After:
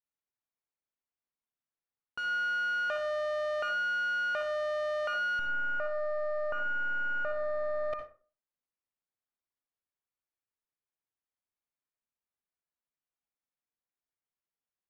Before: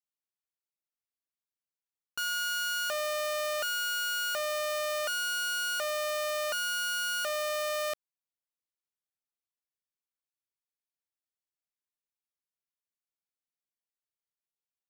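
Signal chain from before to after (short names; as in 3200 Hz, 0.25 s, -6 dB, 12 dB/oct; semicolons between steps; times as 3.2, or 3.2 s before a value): 5.39–7.93 delta modulation 64 kbps, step -49 dBFS; LPF 2100 Hz 12 dB/oct; reverb RT60 0.40 s, pre-delay 53 ms, DRR 5 dB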